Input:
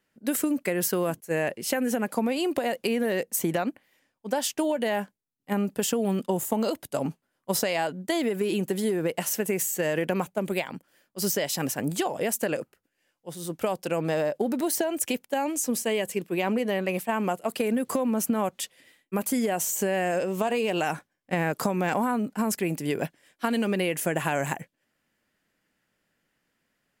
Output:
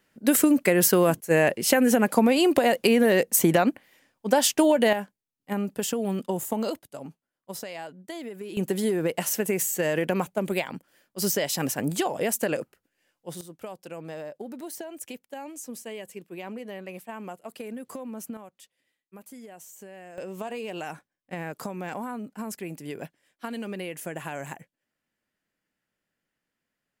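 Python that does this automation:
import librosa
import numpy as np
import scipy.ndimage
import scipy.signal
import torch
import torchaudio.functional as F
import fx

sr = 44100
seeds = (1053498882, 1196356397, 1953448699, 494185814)

y = fx.gain(x, sr, db=fx.steps((0.0, 6.5), (4.93, -2.0), (6.79, -11.0), (8.57, 1.0), (13.41, -11.5), (18.37, -19.0), (20.18, -8.5)))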